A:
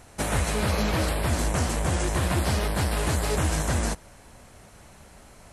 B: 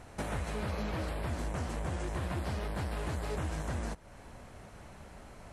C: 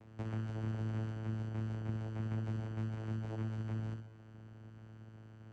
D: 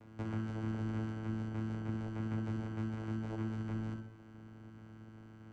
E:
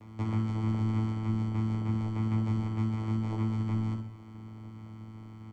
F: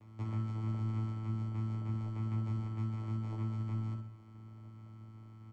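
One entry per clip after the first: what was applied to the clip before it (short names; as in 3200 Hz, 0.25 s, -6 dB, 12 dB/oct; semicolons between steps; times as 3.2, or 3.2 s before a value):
compressor 2.5:1, threshold -37 dBFS, peak gain reduction 11.5 dB; high shelf 4200 Hz -11 dB
vocoder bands 4, saw 110 Hz; on a send: flutter echo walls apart 10.8 m, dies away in 0.64 s; on the sum: gain -2.5 dB
on a send at -7 dB: EQ curve 900 Hz 0 dB, 1500 Hz +14 dB, 2500 Hz -8 dB + reverb RT60 0.40 s, pre-delay 3 ms; on the sum: gain +1 dB
notch 1500 Hz, Q 5.2; on a send: early reflections 10 ms -3 dB, 26 ms -18 dB; on the sum: gain +5 dB
resonator 120 Hz, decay 0.15 s, harmonics odd, mix 70%; gain -1.5 dB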